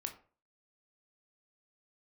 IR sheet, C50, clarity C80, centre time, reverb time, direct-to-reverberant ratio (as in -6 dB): 11.5 dB, 16.5 dB, 11 ms, 0.40 s, 4.5 dB